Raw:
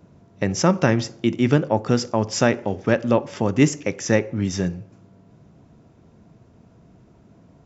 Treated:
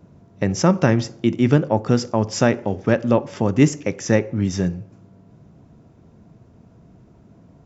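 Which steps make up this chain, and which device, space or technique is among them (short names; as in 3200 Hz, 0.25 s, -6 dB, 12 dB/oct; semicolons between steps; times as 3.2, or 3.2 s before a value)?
tone controls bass +2 dB, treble +5 dB; behind a face mask (high shelf 3100 Hz -8 dB); gain +1 dB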